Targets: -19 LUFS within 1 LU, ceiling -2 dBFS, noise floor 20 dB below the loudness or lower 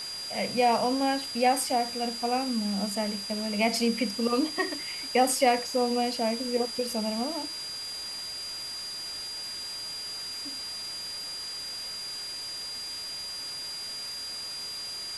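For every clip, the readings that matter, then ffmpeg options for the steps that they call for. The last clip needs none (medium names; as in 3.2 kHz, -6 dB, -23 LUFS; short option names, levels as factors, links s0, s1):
steady tone 4.8 kHz; tone level -35 dBFS; noise floor -37 dBFS; noise floor target -50 dBFS; loudness -29.5 LUFS; peak level -11.5 dBFS; loudness target -19.0 LUFS
-> -af "bandreject=f=4800:w=30"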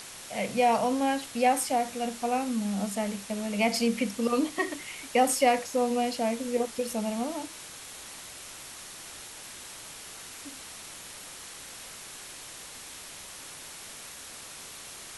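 steady tone not found; noise floor -45 dBFS; noise floor target -48 dBFS
-> -af "afftdn=nr=6:nf=-45"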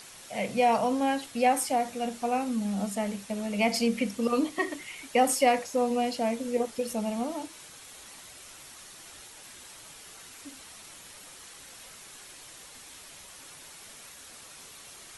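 noise floor -49 dBFS; loudness -28.0 LUFS; peak level -11.5 dBFS; loudness target -19.0 LUFS
-> -af "volume=2.82"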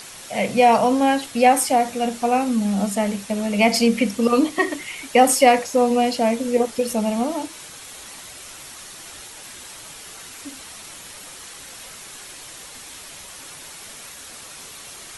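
loudness -19.0 LUFS; peak level -2.5 dBFS; noise floor -40 dBFS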